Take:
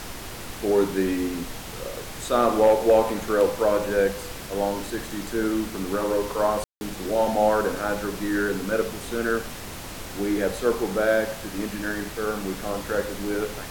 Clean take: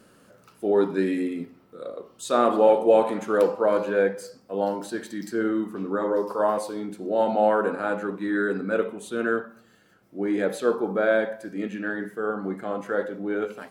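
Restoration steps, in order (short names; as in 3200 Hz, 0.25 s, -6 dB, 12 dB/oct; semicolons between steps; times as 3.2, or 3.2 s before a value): clip repair -10 dBFS; room tone fill 6.64–6.81; noise print and reduce 18 dB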